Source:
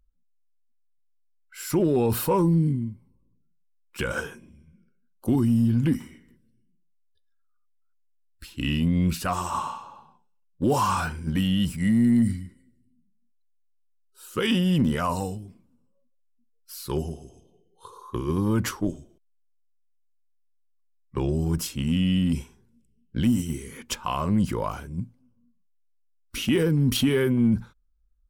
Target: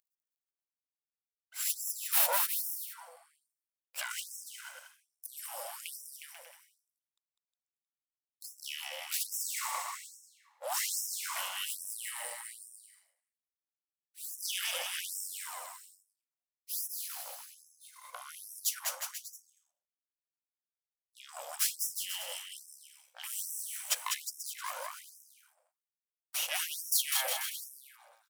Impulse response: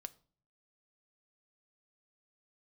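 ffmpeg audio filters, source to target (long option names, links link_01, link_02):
-filter_complex "[0:a]crystalizer=i=3:c=0,aeval=exprs='max(val(0),0)':channel_layout=same,asplit=2[link_01][link_02];[link_02]aecho=0:1:200|360|488|590.4|672.3:0.631|0.398|0.251|0.158|0.1[link_03];[link_01][link_03]amix=inputs=2:normalize=0,afftfilt=real='re*gte(b*sr/1024,490*pow(5300/490,0.5+0.5*sin(2*PI*1.2*pts/sr)))':imag='im*gte(b*sr/1024,490*pow(5300/490,0.5+0.5*sin(2*PI*1.2*pts/sr)))':win_size=1024:overlap=0.75,volume=-4dB"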